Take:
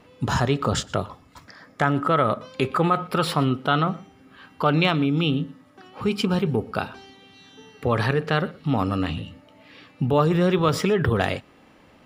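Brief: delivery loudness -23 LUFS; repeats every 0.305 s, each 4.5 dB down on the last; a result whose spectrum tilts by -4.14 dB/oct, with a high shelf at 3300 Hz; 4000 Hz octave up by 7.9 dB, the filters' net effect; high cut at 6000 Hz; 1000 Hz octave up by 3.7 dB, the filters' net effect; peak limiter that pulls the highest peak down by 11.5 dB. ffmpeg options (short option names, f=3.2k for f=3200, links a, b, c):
-af "lowpass=6k,equalizer=f=1k:t=o:g=3.5,highshelf=f=3.3k:g=8.5,equalizer=f=4k:t=o:g=5,alimiter=limit=-11.5dB:level=0:latency=1,aecho=1:1:305|610|915|1220|1525|1830|2135|2440|2745:0.596|0.357|0.214|0.129|0.0772|0.0463|0.0278|0.0167|0.01"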